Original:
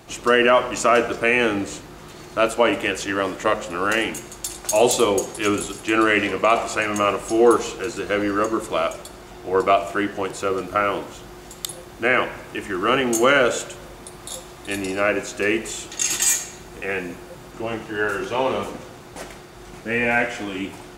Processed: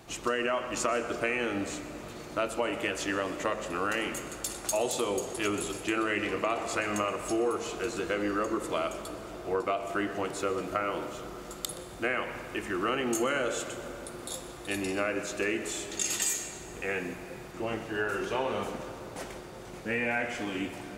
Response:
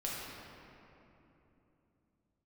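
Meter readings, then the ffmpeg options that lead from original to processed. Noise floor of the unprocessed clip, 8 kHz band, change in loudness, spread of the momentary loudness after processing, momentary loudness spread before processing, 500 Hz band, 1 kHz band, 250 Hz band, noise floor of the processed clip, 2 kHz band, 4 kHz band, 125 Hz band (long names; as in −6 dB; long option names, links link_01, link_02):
−41 dBFS, −9.0 dB, −11.0 dB, 10 LU, 19 LU, −10.5 dB, −11.0 dB, −9.0 dB, −44 dBFS, −10.5 dB, −9.5 dB, −7.5 dB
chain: -filter_complex "[0:a]acompressor=threshold=-21dB:ratio=5,asplit=2[link_01][link_02];[1:a]atrim=start_sample=2205,asetrate=22491,aresample=44100,adelay=123[link_03];[link_02][link_03]afir=irnorm=-1:irlink=0,volume=-18.5dB[link_04];[link_01][link_04]amix=inputs=2:normalize=0,volume=-5.5dB"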